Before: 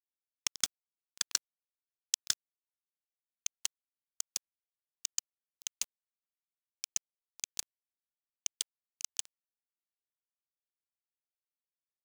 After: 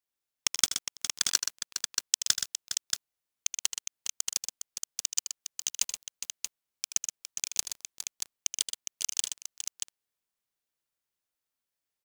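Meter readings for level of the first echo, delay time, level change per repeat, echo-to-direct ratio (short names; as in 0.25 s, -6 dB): -10.0 dB, 78 ms, no steady repeat, -2.0 dB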